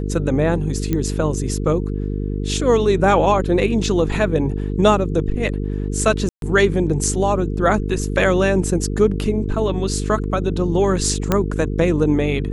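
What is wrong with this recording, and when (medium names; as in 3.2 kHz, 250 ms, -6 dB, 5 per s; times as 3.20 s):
buzz 50 Hz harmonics 9 -23 dBFS
0.93 s: pop -8 dBFS
6.29–6.42 s: dropout 132 ms
11.32 s: pop -3 dBFS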